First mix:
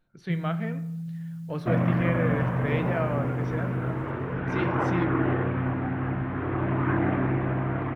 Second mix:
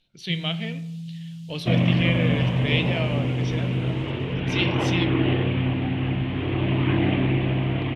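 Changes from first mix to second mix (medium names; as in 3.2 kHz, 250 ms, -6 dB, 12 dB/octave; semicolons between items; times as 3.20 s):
first sound: add distance through air 61 m; second sound: add bass shelf 460 Hz +5 dB; master: add resonant high shelf 2.1 kHz +13 dB, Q 3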